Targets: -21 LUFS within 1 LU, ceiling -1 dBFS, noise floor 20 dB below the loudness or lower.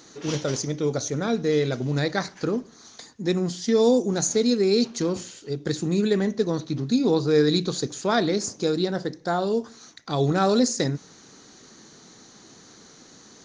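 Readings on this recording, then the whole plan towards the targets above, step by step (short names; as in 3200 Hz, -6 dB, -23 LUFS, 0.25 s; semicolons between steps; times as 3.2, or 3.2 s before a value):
loudness -24.0 LUFS; peak -8.0 dBFS; loudness target -21.0 LUFS
-> gain +3 dB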